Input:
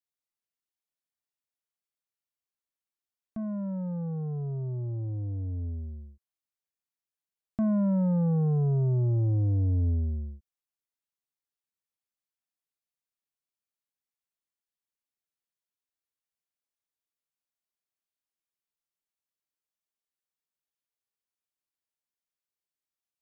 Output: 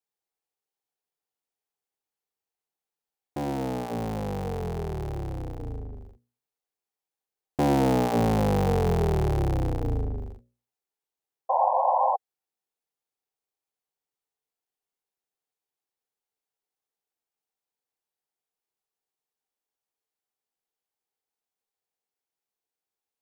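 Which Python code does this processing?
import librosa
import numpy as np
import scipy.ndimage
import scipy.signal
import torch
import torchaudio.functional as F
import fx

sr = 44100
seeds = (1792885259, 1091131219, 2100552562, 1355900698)

y = fx.cycle_switch(x, sr, every=3, mode='inverted')
y = fx.hum_notches(y, sr, base_hz=60, count=10)
y = fx.spec_paint(y, sr, seeds[0], shape='noise', start_s=11.49, length_s=0.67, low_hz=510.0, high_hz=1100.0, level_db=-29.0)
y = fx.small_body(y, sr, hz=(440.0, 770.0), ring_ms=20, db=11)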